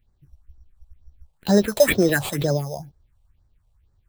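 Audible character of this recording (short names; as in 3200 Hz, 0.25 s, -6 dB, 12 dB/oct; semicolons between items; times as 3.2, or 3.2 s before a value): aliases and images of a low sample rate 5700 Hz, jitter 0%; phasing stages 4, 2.1 Hz, lowest notch 270–2800 Hz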